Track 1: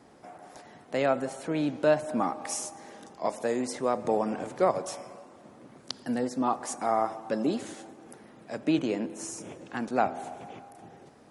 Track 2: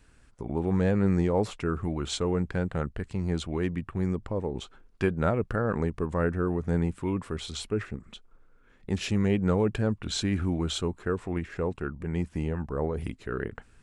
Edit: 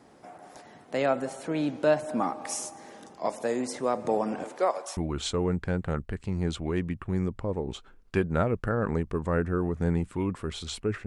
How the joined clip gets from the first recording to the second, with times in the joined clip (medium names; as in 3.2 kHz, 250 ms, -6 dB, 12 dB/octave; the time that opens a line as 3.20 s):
track 1
4.43–4.97 s: high-pass 270 Hz -> 920 Hz
4.97 s: go over to track 2 from 1.84 s